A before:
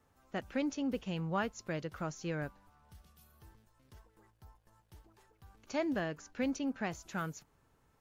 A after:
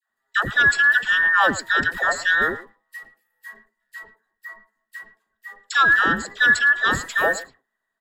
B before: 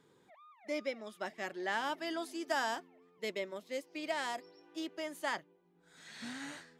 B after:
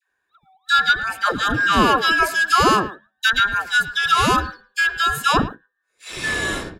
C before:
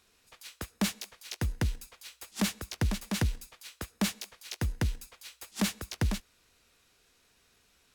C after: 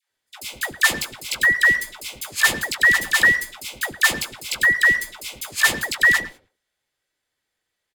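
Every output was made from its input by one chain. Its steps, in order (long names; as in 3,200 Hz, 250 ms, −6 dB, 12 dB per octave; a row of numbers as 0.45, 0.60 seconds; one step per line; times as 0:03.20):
frequency inversion band by band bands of 2,000 Hz
notch filter 5,700 Hz, Q 8.4
noise gate −56 dBFS, range −28 dB
in parallel at +2 dB: brickwall limiter −27 dBFS
on the sum: all-pass dispersion lows, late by 105 ms, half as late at 720 Hz
far-end echo of a speakerphone 110 ms, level −15 dB
loudness normalisation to −18 LKFS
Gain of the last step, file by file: +11.5, +14.0, +8.5 decibels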